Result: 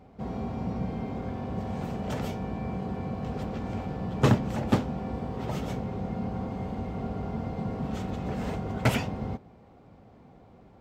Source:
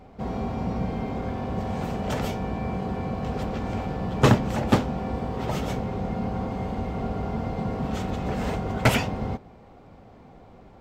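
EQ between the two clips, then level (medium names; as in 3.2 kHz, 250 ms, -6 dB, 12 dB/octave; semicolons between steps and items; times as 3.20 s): high-pass 120 Hz 6 dB/octave; bass shelf 250 Hz +8 dB; -6.5 dB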